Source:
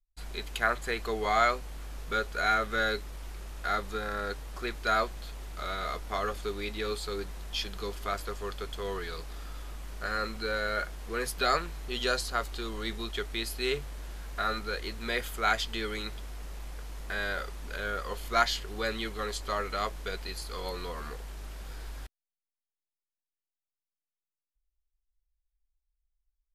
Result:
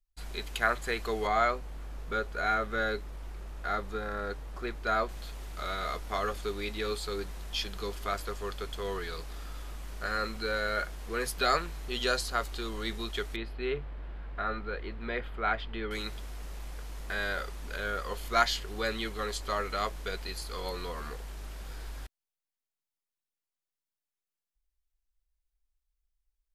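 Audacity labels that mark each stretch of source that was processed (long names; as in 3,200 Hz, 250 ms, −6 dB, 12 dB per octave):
1.270000	5.090000	high-shelf EQ 2,300 Hz −9 dB
13.360000	15.910000	high-frequency loss of the air 440 metres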